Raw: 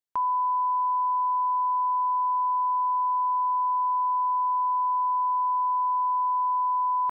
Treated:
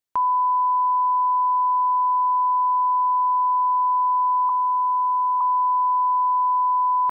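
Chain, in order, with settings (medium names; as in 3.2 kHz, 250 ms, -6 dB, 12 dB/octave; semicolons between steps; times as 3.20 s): 4.49–5.41 s: high-pass 850 Hz 24 dB/octave; trim +5 dB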